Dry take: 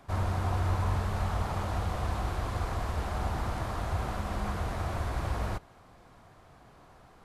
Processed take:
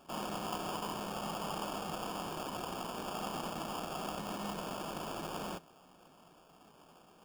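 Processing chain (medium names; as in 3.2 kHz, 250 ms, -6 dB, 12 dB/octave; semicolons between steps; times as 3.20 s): Chebyshev high-pass 160 Hz, order 5; sample-rate reducer 2 kHz, jitter 0%; trim -2.5 dB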